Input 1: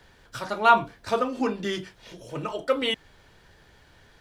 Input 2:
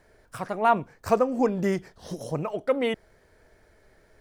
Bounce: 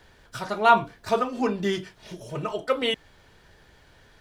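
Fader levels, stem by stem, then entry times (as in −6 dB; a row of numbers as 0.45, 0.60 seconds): 0.0, −8.0 decibels; 0.00, 0.00 seconds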